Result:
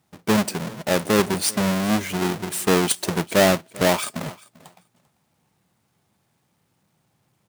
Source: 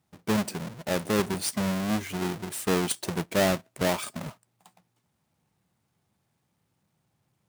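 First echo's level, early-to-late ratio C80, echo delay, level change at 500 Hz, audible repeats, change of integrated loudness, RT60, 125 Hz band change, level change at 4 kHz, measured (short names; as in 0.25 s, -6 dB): -22.0 dB, none, 0.393 s, +7.0 dB, 1, +7.0 dB, none, +5.5 dB, +7.5 dB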